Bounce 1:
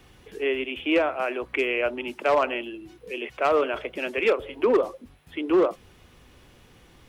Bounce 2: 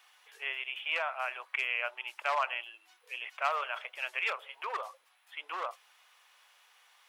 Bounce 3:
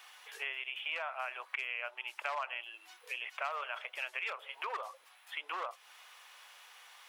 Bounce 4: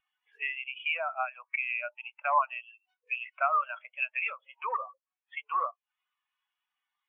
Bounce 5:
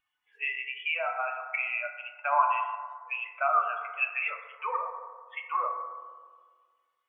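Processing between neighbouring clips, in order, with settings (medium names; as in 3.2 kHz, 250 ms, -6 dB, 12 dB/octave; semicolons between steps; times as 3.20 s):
inverse Chebyshev high-pass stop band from 240 Hz, stop band 60 dB; trim -4 dB
compression 3:1, threshold -46 dBFS, peak gain reduction 15.5 dB; trim +7 dB
spectral contrast expander 2.5:1; trim +5.5 dB
FDN reverb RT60 1.6 s, low-frequency decay 1.55×, high-frequency decay 0.25×, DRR 1.5 dB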